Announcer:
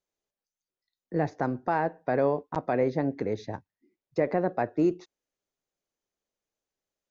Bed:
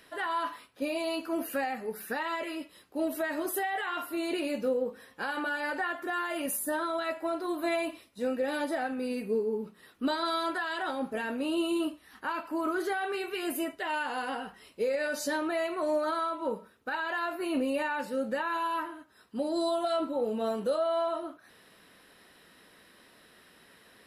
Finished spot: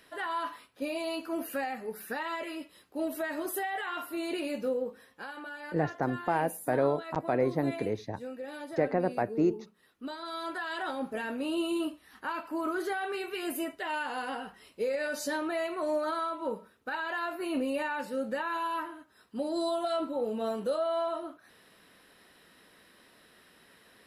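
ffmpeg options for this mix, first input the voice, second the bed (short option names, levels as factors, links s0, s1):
-filter_complex "[0:a]adelay=4600,volume=0.794[s0];[1:a]volume=2.11,afade=t=out:st=4.78:d=0.58:silence=0.398107,afade=t=in:st=10.24:d=0.52:silence=0.375837[s1];[s0][s1]amix=inputs=2:normalize=0"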